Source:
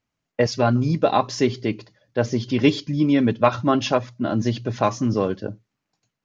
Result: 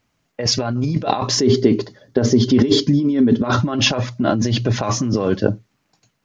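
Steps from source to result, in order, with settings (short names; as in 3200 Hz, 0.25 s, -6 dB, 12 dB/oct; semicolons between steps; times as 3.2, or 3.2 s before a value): negative-ratio compressor -26 dBFS, ratio -1; 1.36–3.59 thirty-one-band EQ 250 Hz +10 dB, 400 Hz +10 dB, 2500 Hz -9 dB; gain +7 dB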